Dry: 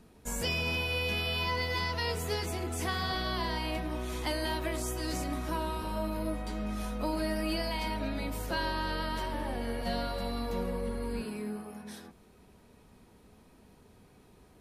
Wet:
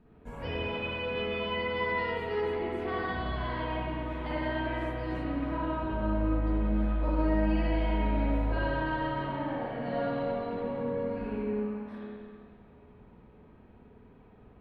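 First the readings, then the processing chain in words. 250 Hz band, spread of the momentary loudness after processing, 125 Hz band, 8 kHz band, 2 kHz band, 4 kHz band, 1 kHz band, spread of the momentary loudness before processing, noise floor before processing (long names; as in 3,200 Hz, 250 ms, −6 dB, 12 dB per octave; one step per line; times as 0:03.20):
+4.0 dB, 6 LU, +2.5 dB, below −30 dB, −0.5 dB, −7.0 dB, +1.5 dB, 6 LU, −59 dBFS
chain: high-frequency loss of the air 480 metres
spring reverb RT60 1.9 s, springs 50/57 ms, chirp 40 ms, DRR −7 dB
level −3.5 dB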